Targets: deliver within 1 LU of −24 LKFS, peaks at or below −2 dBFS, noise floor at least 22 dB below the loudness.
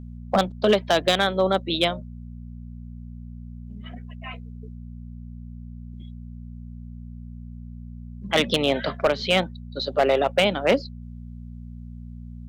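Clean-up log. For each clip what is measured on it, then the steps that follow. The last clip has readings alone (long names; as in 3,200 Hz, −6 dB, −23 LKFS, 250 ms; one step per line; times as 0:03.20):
share of clipped samples 0.3%; peaks flattened at −11.5 dBFS; mains hum 60 Hz; hum harmonics up to 240 Hz; level of the hum −36 dBFS; integrated loudness −22.5 LKFS; sample peak −11.5 dBFS; target loudness −24.0 LKFS
→ clipped peaks rebuilt −11.5 dBFS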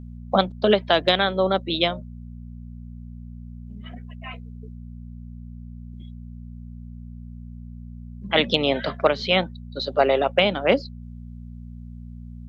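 share of clipped samples 0.0%; mains hum 60 Hz; hum harmonics up to 240 Hz; level of the hum −36 dBFS
→ hum removal 60 Hz, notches 4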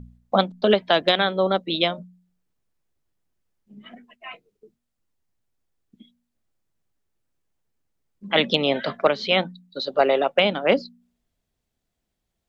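mains hum none found; integrated loudness −21.5 LKFS; sample peak −2.5 dBFS; target loudness −24.0 LKFS
→ level −2.5 dB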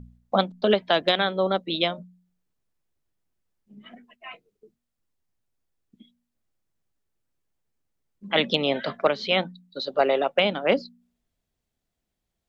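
integrated loudness −24.0 LKFS; sample peak −5.0 dBFS; background noise floor −82 dBFS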